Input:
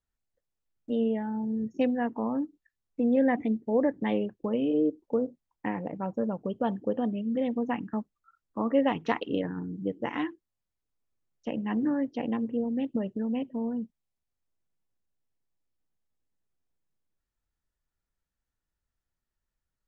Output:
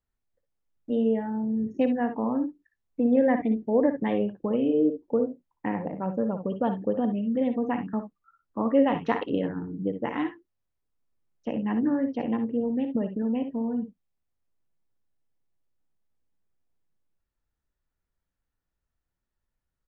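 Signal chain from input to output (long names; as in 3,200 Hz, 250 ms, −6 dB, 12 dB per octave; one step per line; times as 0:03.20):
high-shelf EQ 3,100 Hz −10 dB
ambience of single reflections 58 ms −10 dB, 69 ms −13 dB
level +2.5 dB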